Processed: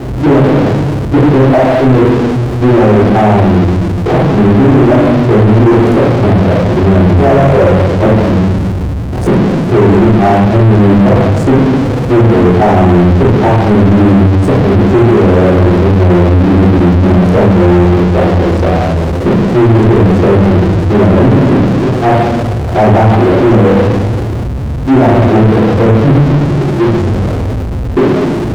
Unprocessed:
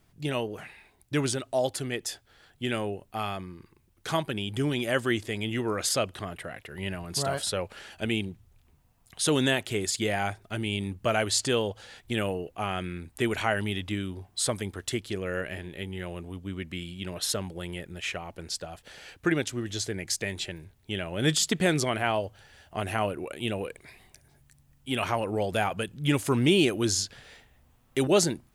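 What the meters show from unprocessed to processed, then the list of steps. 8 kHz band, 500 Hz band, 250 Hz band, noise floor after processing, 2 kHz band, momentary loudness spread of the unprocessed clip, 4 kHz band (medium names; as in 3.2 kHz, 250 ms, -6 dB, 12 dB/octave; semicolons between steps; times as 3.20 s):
no reading, +21.5 dB, +24.0 dB, -15 dBFS, +13.0 dB, 13 LU, +4.5 dB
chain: local Wiener filter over 41 samples; elliptic low-pass 880 Hz, stop band 40 dB; peaking EQ 150 Hz -3.5 dB 0.56 oct; inverted gate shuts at -21 dBFS, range -35 dB; high-pass 56 Hz 24 dB/octave; rotary cabinet horn 6.3 Hz; simulated room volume 190 m³, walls mixed, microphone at 3.6 m; power-law waveshaper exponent 0.35; loudness maximiser +10.5 dB; slew-rate limiter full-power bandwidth 680 Hz; trim -1 dB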